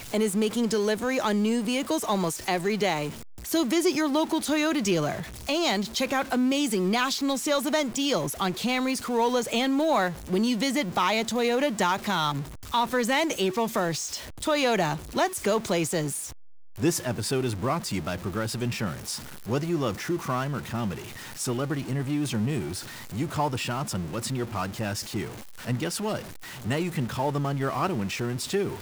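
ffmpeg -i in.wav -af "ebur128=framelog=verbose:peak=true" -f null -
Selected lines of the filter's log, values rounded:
Integrated loudness:
  I:         -27.0 LUFS
  Threshold: -37.1 LUFS
Loudness range:
  LRA:         4.9 LU
  Threshold: -47.1 LUFS
  LRA low:   -30.3 LUFS
  LRA high:  -25.4 LUFS
True peak:
  Peak:      -13.1 dBFS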